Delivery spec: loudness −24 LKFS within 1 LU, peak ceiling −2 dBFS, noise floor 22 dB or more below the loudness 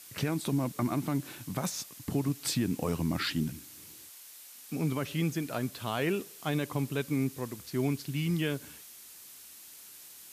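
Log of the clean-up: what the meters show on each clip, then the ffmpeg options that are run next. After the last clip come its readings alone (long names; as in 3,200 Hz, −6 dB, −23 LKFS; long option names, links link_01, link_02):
background noise floor −51 dBFS; target noise floor −55 dBFS; integrated loudness −32.5 LKFS; sample peak −17.5 dBFS; target loudness −24.0 LKFS
→ -af "afftdn=noise_reduction=6:noise_floor=-51"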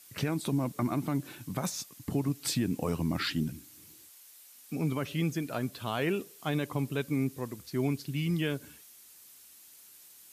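background noise floor −55 dBFS; integrated loudness −33.0 LKFS; sample peak −17.5 dBFS; target loudness −24.0 LKFS
→ -af "volume=9dB"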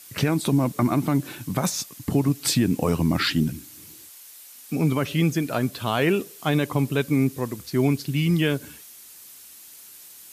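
integrated loudness −24.0 LKFS; sample peak −8.5 dBFS; background noise floor −46 dBFS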